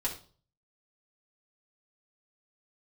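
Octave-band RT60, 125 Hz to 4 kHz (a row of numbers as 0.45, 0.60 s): 0.65, 0.45, 0.45, 0.40, 0.35, 0.40 s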